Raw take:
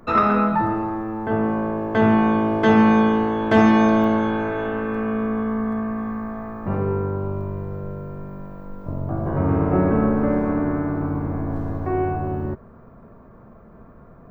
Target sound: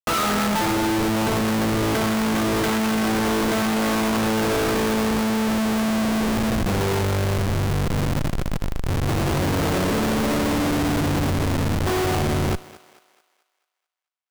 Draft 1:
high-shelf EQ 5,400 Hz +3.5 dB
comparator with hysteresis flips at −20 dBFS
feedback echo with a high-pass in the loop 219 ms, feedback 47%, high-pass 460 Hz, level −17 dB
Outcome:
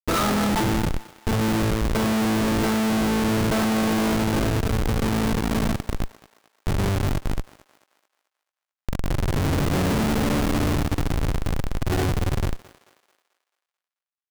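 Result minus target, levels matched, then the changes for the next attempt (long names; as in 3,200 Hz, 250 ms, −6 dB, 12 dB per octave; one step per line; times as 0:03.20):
comparator with hysteresis: distortion +4 dB
change: comparator with hysteresis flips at −31.5 dBFS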